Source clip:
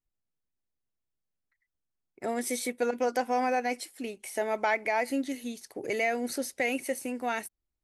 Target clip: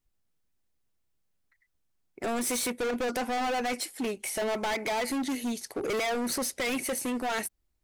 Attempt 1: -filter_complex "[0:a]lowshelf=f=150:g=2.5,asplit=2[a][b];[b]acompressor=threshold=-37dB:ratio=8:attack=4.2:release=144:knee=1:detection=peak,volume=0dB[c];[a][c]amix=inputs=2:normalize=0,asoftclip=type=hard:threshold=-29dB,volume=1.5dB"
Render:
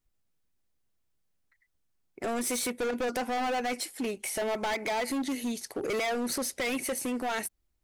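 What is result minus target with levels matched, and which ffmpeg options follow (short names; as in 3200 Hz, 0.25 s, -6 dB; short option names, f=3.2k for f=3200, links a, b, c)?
compressor: peak gain reduction +10 dB
-filter_complex "[0:a]lowshelf=f=150:g=2.5,asplit=2[a][b];[b]acompressor=threshold=-25.5dB:ratio=8:attack=4.2:release=144:knee=1:detection=peak,volume=0dB[c];[a][c]amix=inputs=2:normalize=0,asoftclip=type=hard:threshold=-29dB,volume=1.5dB"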